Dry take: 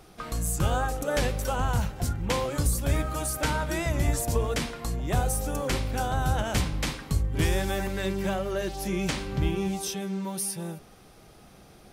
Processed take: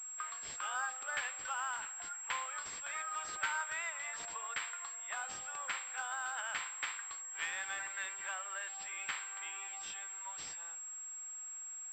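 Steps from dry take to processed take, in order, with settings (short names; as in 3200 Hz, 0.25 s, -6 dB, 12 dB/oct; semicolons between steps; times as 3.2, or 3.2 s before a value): HPF 1200 Hz 24 dB/oct; high shelf 2600 Hz -11.5 dB; pulse-width modulation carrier 7600 Hz; gain +1 dB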